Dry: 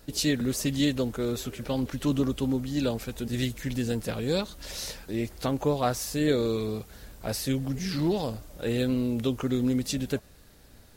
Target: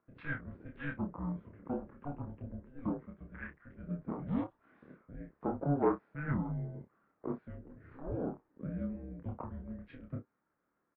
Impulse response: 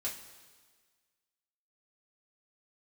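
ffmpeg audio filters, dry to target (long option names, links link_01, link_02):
-af "afwtdn=0.0158,highpass=340,highpass=frequency=490:width_type=q:width=0.5412,highpass=frequency=490:width_type=q:width=1.307,lowpass=frequency=2100:width_type=q:width=0.5176,lowpass=frequency=2100:width_type=q:width=0.7071,lowpass=frequency=2100:width_type=q:width=1.932,afreqshift=-300,aecho=1:1:28|57:0.668|0.188,volume=-2.5dB"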